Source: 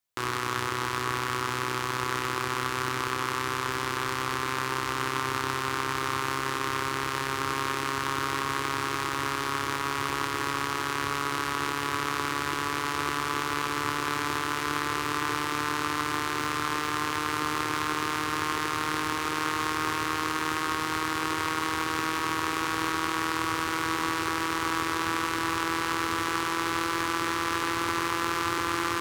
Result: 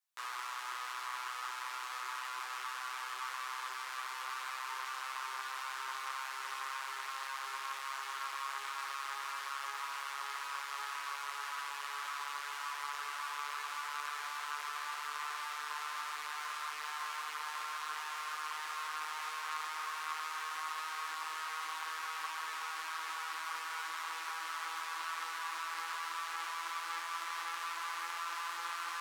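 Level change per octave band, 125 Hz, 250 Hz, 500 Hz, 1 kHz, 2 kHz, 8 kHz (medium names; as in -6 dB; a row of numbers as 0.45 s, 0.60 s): under -40 dB, under -35 dB, -25.0 dB, -10.5 dB, -11.0 dB, -11.0 dB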